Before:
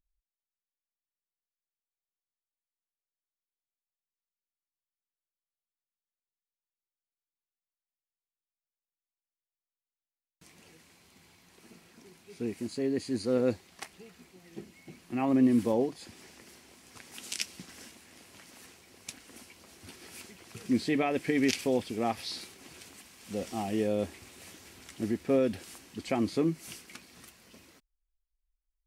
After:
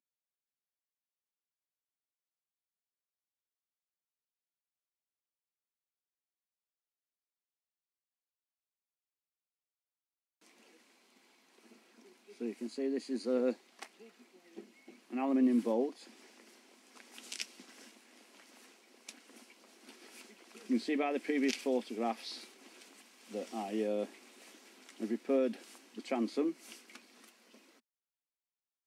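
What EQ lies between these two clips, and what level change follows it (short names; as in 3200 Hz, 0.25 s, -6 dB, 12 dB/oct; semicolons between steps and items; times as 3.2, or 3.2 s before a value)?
elliptic high-pass 220 Hz, stop band 40 dB; high shelf 9600 Hz -8.5 dB; notch 1800 Hz, Q 30; -4.0 dB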